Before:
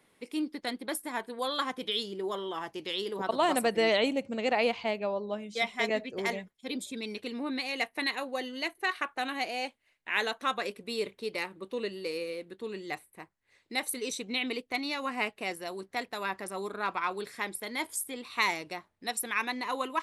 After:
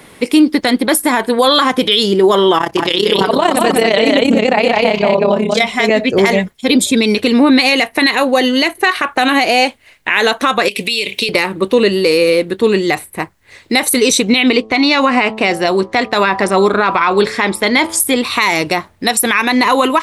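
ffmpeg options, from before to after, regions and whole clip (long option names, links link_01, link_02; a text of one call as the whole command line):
ffmpeg -i in.wav -filter_complex "[0:a]asettb=1/sr,asplit=3[link_01][link_02][link_03];[link_01]atrim=end=2.584[link_04];[link_02]atrim=start=2.58:end=5.62,asetpts=PTS-STARTPTS,afade=type=in:duration=0.004:curve=qsin,afade=type=out:start_time=3.036:duration=0.004:curve=qsin,tremolo=f=33:d=0.824,aecho=1:1:192:0.596,atrim=end_sample=134064[link_05];[link_03]atrim=start=5.616[link_06];[link_04][link_05]acrossfade=duration=0.004:curve1=hsin:curve2=qsin[link_07];[link_07][link_06]acrossfade=duration=0.004:curve1=qsin:curve2=hsin,asettb=1/sr,asplit=3[link_08][link_09][link_10];[link_08]atrim=end=10.684[link_11];[link_09]atrim=start=10.68:end=11.29,asetpts=PTS-STARTPTS,afade=type=in:duration=0.004:curve=qsin,afade=type=out:start_time=0.606:duration=0.004:curve=qsin,highpass=120,highshelf=frequency=1900:width_type=q:width=3:gain=10.5,acompressor=threshold=-38dB:ratio=16:attack=3.2:release=140:knee=1:detection=peak[link_12];[link_10]atrim=start=11.286[link_13];[link_11][link_12]acrossfade=duration=0.004:curve1=hsin:curve2=qsin[link_14];[link_14][link_13]acrossfade=duration=0.004:curve1=qsin:curve2=hsin,asettb=1/sr,asplit=3[link_15][link_16][link_17];[link_15]atrim=end=14.494[link_18];[link_16]atrim=start=14.49:end=18,asetpts=PTS-STARTPTS,afade=type=in:duration=0.004:curve=qsin,afade=type=out:start_time=3.506:duration=0.004:curve=qsin,lowpass=5800,bandreject=frequency=109.4:width_type=h:width=4,bandreject=frequency=218.8:width_type=h:width=4,bandreject=frequency=328.2:width_type=h:width=4,bandreject=frequency=437.6:width_type=h:width=4,bandreject=frequency=547:width_type=h:width=4,bandreject=frequency=656.4:width_type=h:width=4,bandreject=frequency=765.8:width_type=h:width=4,bandreject=frequency=875.2:width_type=h:width=4,bandreject=frequency=984.6:width_type=h:width=4,bandreject=frequency=1094:width_type=h:width=4,bandreject=frequency=1203.4:width_type=h:width=4,bandreject=frequency=1312.8:width_type=h:width=4[link_19];[link_17]atrim=start=17.996[link_20];[link_18][link_19]acrossfade=duration=0.004:curve1=hsin:curve2=qsin[link_21];[link_21][link_20]acrossfade=duration=0.004:curve1=qsin:curve2=hsin,equalizer=frequency=64:width=0.61:gain=5.5,acompressor=threshold=-29dB:ratio=6,alimiter=level_in=27dB:limit=-1dB:release=50:level=0:latency=1,volume=-1dB" out.wav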